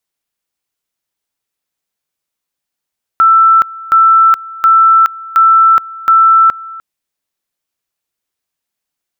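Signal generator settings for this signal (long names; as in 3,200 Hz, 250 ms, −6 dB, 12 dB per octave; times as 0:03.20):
tone at two levels in turn 1,330 Hz −3.5 dBFS, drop 21 dB, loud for 0.42 s, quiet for 0.30 s, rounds 5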